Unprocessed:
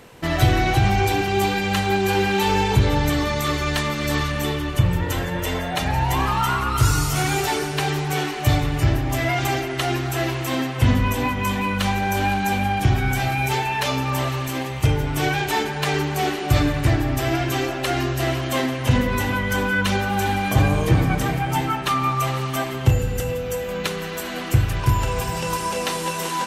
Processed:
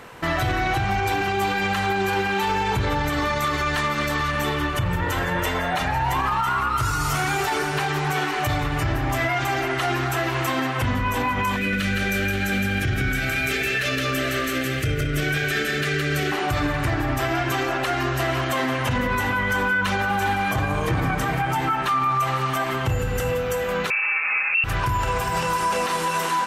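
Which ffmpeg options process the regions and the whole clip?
ffmpeg -i in.wav -filter_complex "[0:a]asettb=1/sr,asplit=3[link_01][link_02][link_03];[link_01]atrim=end=11.564[link_04];[link_02]atrim=start=11.56:end=16.32,asetpts=PTS-STARTPTS,afade=type=in:duration=0.004:curve=qsin,afade=type=out:start_time=4.756:duration=0.004:curve=qsin,asuperstop=centerf=920:order=4:qfactor=1.2,aecho=1:1:164:0.668,atrim=end_sample=209916[link_05];[link_03]atrim=start=16.316[link_06];[link_04][link_05]acrossfade=duration=0.004:curve1=hsin:curve2=qsin[link_07];[link_07][link_06]acrossfade=duration=0.004:curve1=qsin:curve2=hsin,asettb=1/sr,asplit=3[link_08][link_09][link_10];[link_08]atrim=end=23.904[link_11];[link_09]atrim=start=23.9:end=24.64,asetpts=PTS-STARTPTS,afade=type=in:duration=0.004:curve=qsin,afade=type=out:start_time=0.736:duration=0.004:curve=qsin,tiltshelf=frequency=1300:gain=9.5,lowpass=frequency=2400:width_type=q:width=0.5098,lowpass=frequency=2400:width_type=q:width=0.6013,lowpass=frequency=2400:width_type=q:width=0.9,lowpass=frequency=2400:width_type=q:width=2.563,afreqshift=-2800[link_12];[link_10]atrim=start=24.636[link_13];[link_11][link_12]acrossfade=duration=0.004:curve1=hsin:curve2=qsin[link_14];[link_14][link_13]acrossfade=duration=0.004:curve1=qsin:curve2=hsin,equalizer=frequency=1300:width=0.79:gain=9,alimiter=limit=-14.5dB:level=0:latency=1:release=80" out.wav

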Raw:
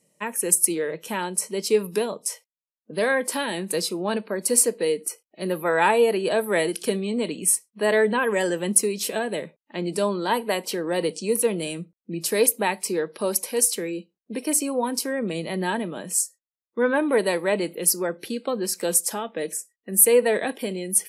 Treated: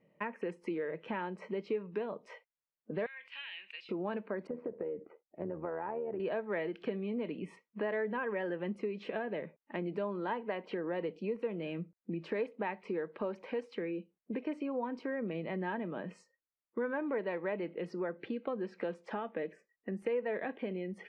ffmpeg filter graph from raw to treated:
ffmpeg -i in.wav -filter_complex "[0:a]asettb=1/sr,asplit=3[link_01][link_02][link_03];[link_01]atrim=end=3.064[link_04];[link_02]atrim=start=3.06:end=3.89,asetpts=PTS-STARTPTS,afade=type=in:duration=0.004:curve=qsin,afade=type=out:start_time=0.826:duration=0.004:curve=qsin,highpass=frequency=2700:width_type=q:width=4.6,acompressor=threshold=-36dB:ratio=4:attack=3.2:release=140:knee=1:detection=peak[link_05];[link_03]atrim=start=3.886[link_06];[link_04][link_05]acrossfade=duration=0.004:curve1=hsin:curve2=qsin[link_07];[link_07][link_06]acrossfade=duration=0.004:curve1=qsin:curve2=hsin,asettb=1/sr,asplit=3[link_08][link_09][link_10];[link_08]atrim=end=4.474[link_11];[link_09]atrim=start=4.47:end=6.2,asetpts=PTS-STARTPTS,afade=type=in:duration=0.004:curve=qsin,afade=type=out:start_time=1.726:duration=0.004:curve=qsin,lowpass=1000,acompressor=threshold=-25dB:ratio=6:attack=3.2:release=140:knee=1:detection=peak,tremolo=f=79:d=0.571[link_12];[link_10]atrim=start=6.196[link_13];[link_11][link_12]acrossfade=duration=0.004:curve1=hsin:curve2=qsin[link_14];[link_14][link_13]acrossfade=duration=0.004:curve1=qsin:curve2=hsin,lowpass=frequency=2400:width=0.5412,lowpass=frequency=2400:width=1.3066,acompressor=threshold=-37dB:ratio=3" out.wav

